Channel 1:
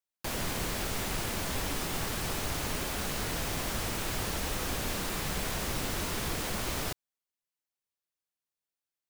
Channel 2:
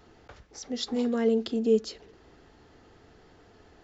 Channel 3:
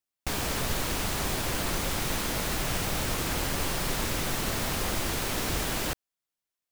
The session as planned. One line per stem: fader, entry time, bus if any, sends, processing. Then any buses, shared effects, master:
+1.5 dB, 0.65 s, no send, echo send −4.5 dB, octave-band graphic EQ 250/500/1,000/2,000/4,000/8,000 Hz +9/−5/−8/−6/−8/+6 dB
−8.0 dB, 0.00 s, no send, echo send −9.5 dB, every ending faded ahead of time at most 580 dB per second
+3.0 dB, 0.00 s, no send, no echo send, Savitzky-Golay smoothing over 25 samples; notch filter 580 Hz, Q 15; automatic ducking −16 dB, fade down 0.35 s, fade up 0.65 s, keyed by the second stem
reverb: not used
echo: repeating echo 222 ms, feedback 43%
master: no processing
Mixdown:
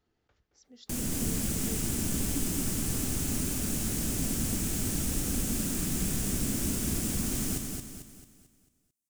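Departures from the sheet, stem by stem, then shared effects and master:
stem 2 −8.0 dB → −19.5 dB
stem 3: muted
master: extra parametric band 760 Hz −5 dB 2.2 octaves

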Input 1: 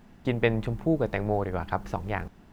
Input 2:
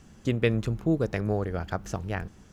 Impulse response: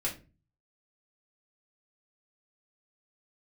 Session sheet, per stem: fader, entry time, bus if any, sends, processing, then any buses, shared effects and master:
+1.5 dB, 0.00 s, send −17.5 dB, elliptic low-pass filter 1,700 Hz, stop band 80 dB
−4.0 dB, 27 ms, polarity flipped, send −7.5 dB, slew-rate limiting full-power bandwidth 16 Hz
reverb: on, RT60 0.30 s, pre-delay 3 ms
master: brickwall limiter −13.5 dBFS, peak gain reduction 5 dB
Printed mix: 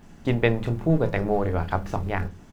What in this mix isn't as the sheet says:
stem 1: missing elliptic low-pass filter 1,700 Hz, stop band 80 dB
master: missing brickwall limiter −13.5 dBFS, peak gain reduction 5 dB

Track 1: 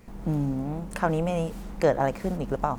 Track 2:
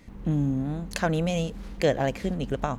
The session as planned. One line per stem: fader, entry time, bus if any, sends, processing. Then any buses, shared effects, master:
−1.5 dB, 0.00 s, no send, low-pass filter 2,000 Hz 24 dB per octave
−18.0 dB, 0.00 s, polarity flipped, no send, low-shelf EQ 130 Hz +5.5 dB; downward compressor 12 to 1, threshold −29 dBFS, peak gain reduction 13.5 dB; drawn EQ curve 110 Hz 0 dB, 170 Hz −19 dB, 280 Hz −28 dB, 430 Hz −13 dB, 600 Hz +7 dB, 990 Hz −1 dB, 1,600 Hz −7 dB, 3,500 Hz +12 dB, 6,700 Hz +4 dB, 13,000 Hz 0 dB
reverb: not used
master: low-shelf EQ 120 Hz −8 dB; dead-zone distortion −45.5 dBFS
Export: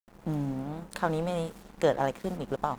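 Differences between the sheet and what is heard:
stem 1: missing low-pass filter 2,000 Hz 24 dB per octave
stem 2: missing downward compressor 12 to 1, threshold −29 dBFS, peak gain reduction 13.5 dB

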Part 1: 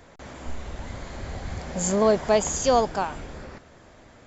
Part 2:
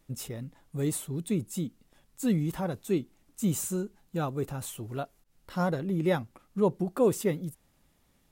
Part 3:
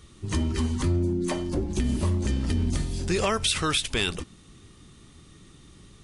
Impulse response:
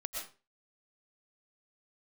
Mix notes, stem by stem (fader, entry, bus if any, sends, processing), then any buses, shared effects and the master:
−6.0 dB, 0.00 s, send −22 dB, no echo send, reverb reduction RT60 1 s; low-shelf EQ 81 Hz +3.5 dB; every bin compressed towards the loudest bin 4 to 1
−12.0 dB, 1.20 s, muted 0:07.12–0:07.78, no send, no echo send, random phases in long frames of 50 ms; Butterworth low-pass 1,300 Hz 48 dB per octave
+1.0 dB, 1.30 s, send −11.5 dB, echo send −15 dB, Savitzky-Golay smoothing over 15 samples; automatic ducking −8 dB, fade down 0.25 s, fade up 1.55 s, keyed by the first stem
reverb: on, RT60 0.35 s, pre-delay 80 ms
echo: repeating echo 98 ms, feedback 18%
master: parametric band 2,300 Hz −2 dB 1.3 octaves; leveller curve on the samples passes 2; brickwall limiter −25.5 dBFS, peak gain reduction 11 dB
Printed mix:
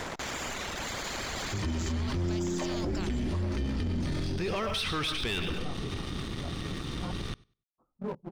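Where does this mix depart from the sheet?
stem 2: entry 1.20 s → 1.45 s
stem 3 +1.0 dB → +12.0 dB
master: missing parametric band 2,300 Hz −2 dB 1.3 octaves

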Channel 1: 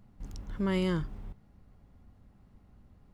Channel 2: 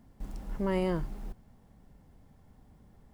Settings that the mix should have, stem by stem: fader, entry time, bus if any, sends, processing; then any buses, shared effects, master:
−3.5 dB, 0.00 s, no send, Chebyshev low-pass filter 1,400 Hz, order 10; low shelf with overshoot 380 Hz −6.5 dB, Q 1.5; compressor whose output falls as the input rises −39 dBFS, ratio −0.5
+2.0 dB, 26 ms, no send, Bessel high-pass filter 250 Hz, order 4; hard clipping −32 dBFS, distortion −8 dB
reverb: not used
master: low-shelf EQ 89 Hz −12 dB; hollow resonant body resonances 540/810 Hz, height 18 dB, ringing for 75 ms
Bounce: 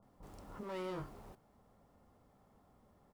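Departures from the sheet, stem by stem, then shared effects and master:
stem 2 +2.0 dB → −6.0 dB
master: missing hollow resonant body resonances 540/810 Hz, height 18 dB, ringing for 75 ms

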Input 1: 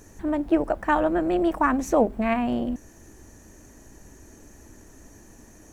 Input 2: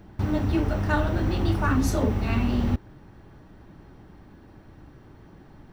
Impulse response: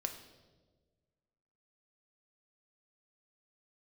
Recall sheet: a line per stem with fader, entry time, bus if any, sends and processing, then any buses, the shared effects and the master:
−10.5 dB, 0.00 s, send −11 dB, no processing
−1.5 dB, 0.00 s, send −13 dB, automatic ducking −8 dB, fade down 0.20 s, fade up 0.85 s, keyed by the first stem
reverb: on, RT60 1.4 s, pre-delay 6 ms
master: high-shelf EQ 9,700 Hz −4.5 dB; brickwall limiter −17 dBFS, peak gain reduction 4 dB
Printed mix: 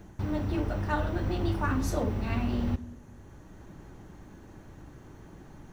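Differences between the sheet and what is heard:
stem 1 −10.5 dB → −17.5 dB
master: missing high-shelf EQ 9,700 Hz −4.5 dB

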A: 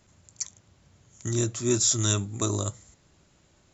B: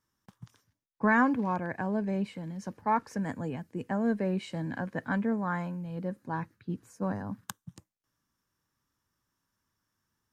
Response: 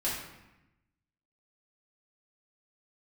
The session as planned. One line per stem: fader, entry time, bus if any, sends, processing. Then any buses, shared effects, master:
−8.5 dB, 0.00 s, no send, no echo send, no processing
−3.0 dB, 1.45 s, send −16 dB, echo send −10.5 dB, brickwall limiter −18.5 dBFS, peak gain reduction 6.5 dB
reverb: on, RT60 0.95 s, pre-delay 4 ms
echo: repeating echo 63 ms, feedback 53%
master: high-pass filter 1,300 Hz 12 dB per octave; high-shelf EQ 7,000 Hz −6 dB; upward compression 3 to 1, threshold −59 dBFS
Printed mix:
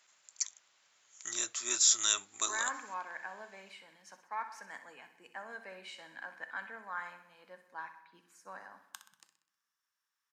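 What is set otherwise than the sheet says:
stem A −8.5 dB → +1.0 dB
master: missing upward compression 3 to 1, threshold −59 dBFS

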